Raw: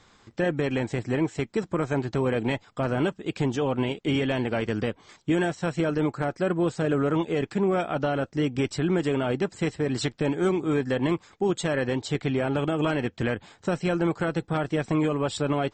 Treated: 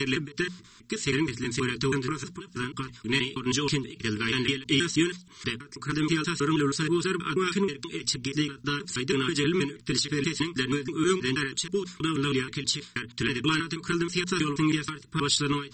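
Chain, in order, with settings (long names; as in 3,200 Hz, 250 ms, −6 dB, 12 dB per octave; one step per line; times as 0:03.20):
slices reordered back to front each 160 ms, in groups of 5
Chebyshev band-stop filter 430–970 Hz, order 5
high-shelf EQ 2,300 Hz +11.5 dB
mains-hum notches 60/120/180/240 Hz
dynamic equaliser 4,500 Hz, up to +7 dB, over −46 dBFS, Q 1.4
every ending faded ahead of time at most 150 dB per second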